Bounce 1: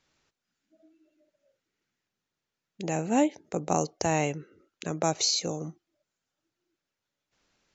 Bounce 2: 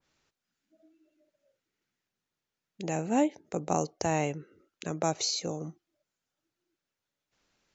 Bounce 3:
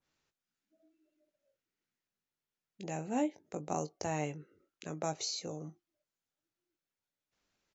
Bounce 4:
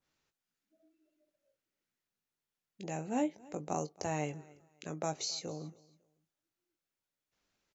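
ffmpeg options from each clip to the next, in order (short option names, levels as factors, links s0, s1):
-af "adynamicequalizer=threshold=0.00631:dfrequency=2000:dqfactor=0.7:tfrequency=2000:tqfactor=0.7:attack=5:release=100:ratio=0.375:range=2.5:mode=cutabove:tftype=highshelf,volume=0.794"
-filter_complex "[0:a]asplit=2[s0][s1];[s1]adelay=20,volume=0.316[s2];[s0][s2]amix=inputs=2:normalize=0,volume=0.422"
-af "aecho=1:1:276|552:0.0708|0.0177"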